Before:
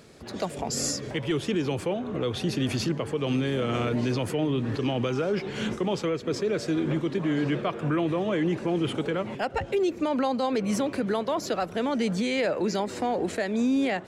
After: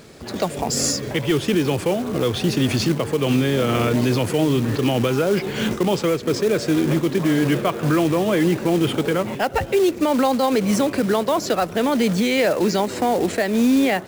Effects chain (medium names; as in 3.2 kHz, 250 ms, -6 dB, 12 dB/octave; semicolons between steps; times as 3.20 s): wow and flutter 25 cents; short-mantissa float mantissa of 2-bit; trim +7.5 dB